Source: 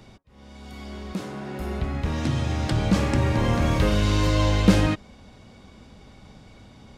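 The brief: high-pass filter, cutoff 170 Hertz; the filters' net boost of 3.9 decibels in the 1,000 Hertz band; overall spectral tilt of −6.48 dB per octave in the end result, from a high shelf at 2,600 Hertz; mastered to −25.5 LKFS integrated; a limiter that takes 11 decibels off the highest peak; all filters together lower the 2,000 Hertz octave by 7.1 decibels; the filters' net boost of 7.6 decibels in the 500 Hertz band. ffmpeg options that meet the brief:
ffmpeg -i in.wav -af "highpass=170,equalizer=frequency=500:width_type=o:gain=8.5,equalizer=frequency=1000:width_type=o:gain=5,equalizer=frequency=2000:width_type=o:gain=-9,highshelf=frequency=2600:gain=-6.5,alimiter=limit=-15dB:level=0:latency=1" out.wav

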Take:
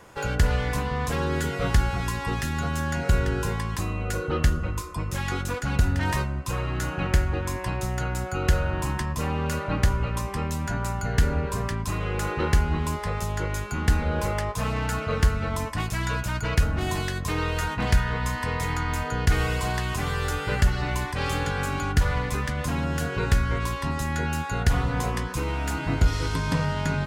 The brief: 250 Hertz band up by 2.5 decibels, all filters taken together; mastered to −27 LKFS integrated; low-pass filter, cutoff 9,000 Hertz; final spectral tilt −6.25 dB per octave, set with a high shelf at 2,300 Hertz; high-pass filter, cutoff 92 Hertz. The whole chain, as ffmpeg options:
ffmpeg -i in.wav -af "highpass=92,lowpass=9000,equalizer=frequency=250:width_type=o:gain=4,highshelf=frequency=2300:gain=-8,volume=1.5dB" out.wav

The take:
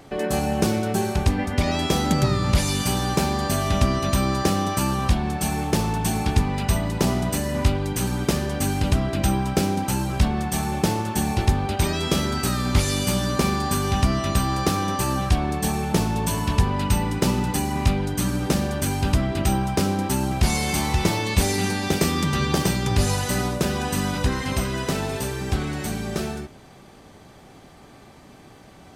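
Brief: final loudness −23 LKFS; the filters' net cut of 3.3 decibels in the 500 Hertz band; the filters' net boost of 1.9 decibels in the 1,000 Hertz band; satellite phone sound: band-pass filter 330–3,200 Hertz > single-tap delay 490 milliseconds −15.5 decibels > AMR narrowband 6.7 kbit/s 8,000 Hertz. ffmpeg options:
ffmpeg -i in.wav -af "highpass=330,lowpass=3200,equalizer=frequency=500:width_type=o:gain=-4,equalizer=frequency=1000:width_type=o:gain=4,aecho=1:1:490:0.168,volume=7dB" -ar 8000 -c:a libopencore_amrnb -b:a 6700 out.amr

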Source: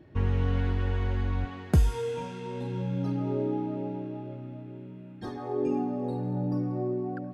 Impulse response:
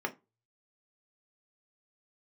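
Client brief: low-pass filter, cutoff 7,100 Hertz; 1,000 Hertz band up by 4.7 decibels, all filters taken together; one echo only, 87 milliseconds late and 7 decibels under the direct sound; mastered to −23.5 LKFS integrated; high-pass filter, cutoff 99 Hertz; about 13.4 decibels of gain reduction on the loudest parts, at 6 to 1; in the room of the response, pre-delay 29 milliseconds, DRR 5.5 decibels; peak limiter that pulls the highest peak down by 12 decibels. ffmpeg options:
-filter_complex "[0:a]highpass=99,lowpass=7100,equalizer=frequency=1000:width_type=o:gain=6,acompressor=threshold=-33dB:ratio=6,alimiter=level_in=6dB:limit=-24dB:level=0:latency=1,volume=-6dB,aecho=1:1:87:0.447,asplit=2[link_01][link_02];[1:a]atrim=start_sample=2205,adelay=29[link_03];[link_02][link_03]afir=irnorm=-1:irlink=0,volume=-11dB[link_04];[link_01][link_04]amix=inputs=2:normalize=0,volume=13dB"

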